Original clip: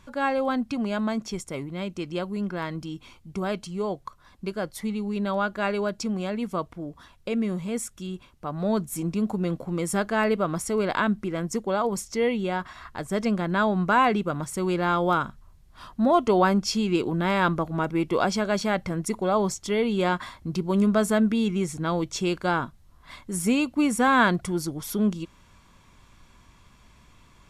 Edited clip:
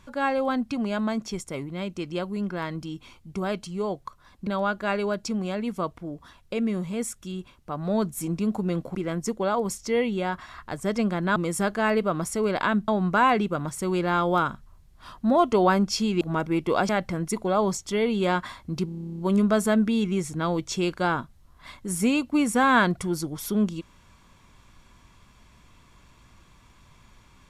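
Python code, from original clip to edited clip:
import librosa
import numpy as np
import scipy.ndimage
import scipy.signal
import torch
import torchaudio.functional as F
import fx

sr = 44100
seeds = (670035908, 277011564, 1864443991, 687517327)

y = fx.edit(x, sr, fx.cut(start_s=4.47, length_s=0.75),
    fx.move(start_s=9.7, length_s=1.52, to_s=13.63),
    fx.cut(start_s=16.96, length_s=0.69),
    fx.cut(start_s=18.33, length_s=0.33),
    fx.stutter(start_s=20.63, slice_s=0.03, count=12), tone=tone)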